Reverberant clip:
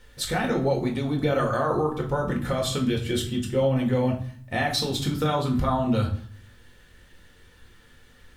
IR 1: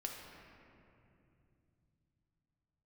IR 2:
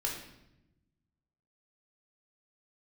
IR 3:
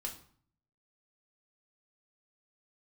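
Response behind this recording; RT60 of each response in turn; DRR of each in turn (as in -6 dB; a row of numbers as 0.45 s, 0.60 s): 3; 2.7 s, 0.90 s, 0.50 s; 0.0 dB, -1.0 dB, -0.5 dB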